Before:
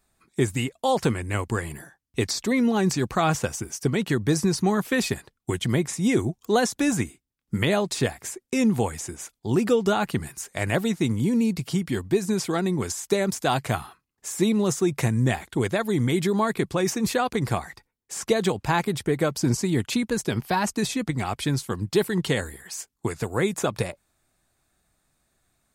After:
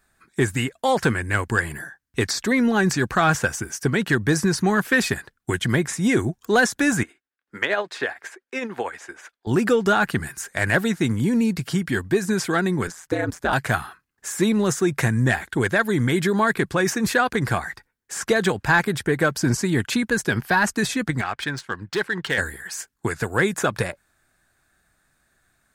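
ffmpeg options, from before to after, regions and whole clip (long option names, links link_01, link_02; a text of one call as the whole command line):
ffmpeg -i in.wav -filter_complex "[0:a]asettb=1/sr,asplit=3[link_01][link_02][link_03];[link_01]atrim=end=7.034[link_04];[link_02]atrim=start=7.03:end=9.47,asetpts=PTS-STARTPTS,afade=type=in:duration=0.004:curve=qsin,afade=type=out:start_time=2.436:duration=0.004:curve=qsin,acrossover=split=340 4300:gain=0.0708 1 0.158[link_05][link_06][link_07];[link_05][link_06][link_07]amix=inputs=3:normalize=0,tremolo=f=13:d=0.52[link_08];[link_03]atrim=start=9.466[link_09];[link_04][link_08]acrossfade=duration=0.004:curve1=hsin:curve2=qsin[link_10];[link_10][link_09]acrossfade=duration=0.004:curve1=qsin:curve2=hsin,asettb=1/sr,asplit=3[link_11][link_12][link_13];[link_11]atrim=end=12.874[link_14];[link_12]atrim=start=12.87:end=13.53,asetpts=PTS-STARTPTS,afade=type=in:duration=0.004:curve=qsin,afade=type=out:start_time=0.656:duration=0.004:curve=qsin,aeval=exprs='val(0)*sin(2*PI*84*n/s)':channel_layout=same,highshelf=frequency=2600:gain=-10[link_15];[link_13]atrim=start=13.526[link_16];[link_14][link_15]acrossfade=duration=0.004:curve1=hsin:curve2=qsin[link_17];[link_17][link_16]acrossfade=duration=0.004:curve1=qsin:curve2=hsin,asettb=1/sr,asplit=3[link_18][link_19][link_20];[link_18]atrim=end=21.214[link_21];[link_19]atrim=start=21.21:end=22.38,asetpts=PTS-STARTPTS,afade=type=in:duration=0.004:curve=qsin,afade=type=out:start_time=1.166:duration=0.004:curve=qsin,lowshelf=frequency=460:gain=-11,adynamicsmooth=sensitivity=4.5:basefreq=3200,asoftclip=type=hard:threshold=-18.5dB[link_22];[link_20]atrim=start=22.376[link_23];[link_21][link_22]acrossfade=duration=0.004:curve1=hsin:curve2=qsin[link_24];[link_24][link_23]acrossfade=duration=0.004:curve1=qsin:curve2=hsin,equalizer=frequency=1600:width_type=o:width=0.51:gain=12,acontrast=71,volume=-4.5dB" out.wav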